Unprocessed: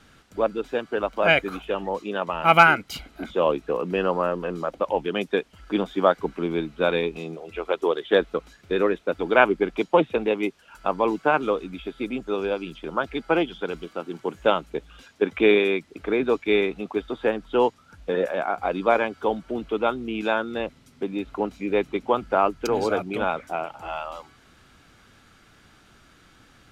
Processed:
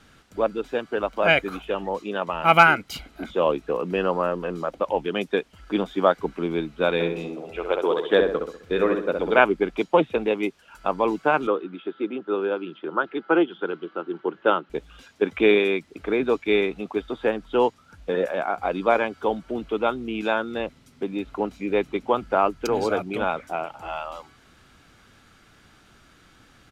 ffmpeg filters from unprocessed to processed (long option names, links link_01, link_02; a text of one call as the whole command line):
ffmpeg -i in.wav -filter_complex "[0:a]asplit=3[link_01][link_02][link_03];[link_01]afade=type=out:start_time=6.99:duration=0.02[link_04];[link_02]asplit=2[link_05][link_06];[link_06]adelay=65,lowpass=frequency=2000:poles=1,volume=-4dB,asplit=2[link_07][link_08];[link_08]adelay=65,lowpass=frequency=2000:poles=1,volume=0.45,asplit=2[link_09][link_10];[link_10]adelay=65,lowpass=frequency=2000:poles=1,volume=0.45,asplit=2[link_11][link_12];[link_12]adelay=65,lowpass=frequency=2000:poles=1,volume=0.45,asplit=2[link_13][link_14];[link_14]adelay=65,lowpass=frequency=2000:poles=1,volume=0.45,asplit=2[link_15][link_16];[link_16]adelay=65,lowpass=frequency=2000:poles=1,volume=0.45[link_17];[link_05][link_07][link_09][link_11][link_13][link_15][link_17]amix=inputs=7:normalize=0,afade=type=in:start_time=6.99:duration=0.02,afade=type=out:start_time=9.38:duration=0.02[link_18];[link_03]afade=type=in:start_time=9.38:duration=0.02[link_19];[link_04][link_18][link_19]amix=inputs=3:normalize=0,asettb=1/sr,asplit=3[link_20][link_21][link_22];[link_20]atrim=end=11.474[link_23];[link_21]atrim=start=11.47:end=14.7,asetpts=PTS-STARTPTS,afade=type=in:duration=0.004:curve=qsin,afade=type=out:start_time=3.226:duration=0.004:curve=qsin,highpass=frequency=180:width=0.5412,highpass=frequency=180:width=1.3066,equalizer=frequency=240:width_type=q:width=4:gain=-5,equalizer=frequency=350:width_type=q:width=4:gain=6,equalizer=frequency=660:width_type=q:width=4:gain=-4,equalizer=frequency=1400:width_type=q:width=4:gain=5,equalizer=frequency=2300:width_type=q:width=4:gain=-8,lowpass=frequency=3200:width=0.5412,lowpass=frequency=3200:width=1.3066[link_24];[link_22]atrim=start=14.696[link_25];[link_23][link_24]acrossfade=duration=0.004:curve1=hsin:curve2=qsin[link_26];[link_26][link_25]acrossfade=duration=0.004:curve1=qsin:curve2=hsin" out.wav